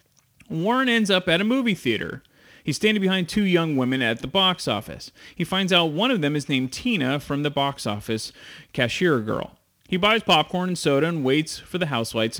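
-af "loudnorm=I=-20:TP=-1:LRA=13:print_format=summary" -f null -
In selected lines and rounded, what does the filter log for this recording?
Input Integrated:    -22.2 LUFS
Input True Peak:      -5.9 dBTP
Input LRA:             2.4 LU
Input Threshold:     -32.7 LUFS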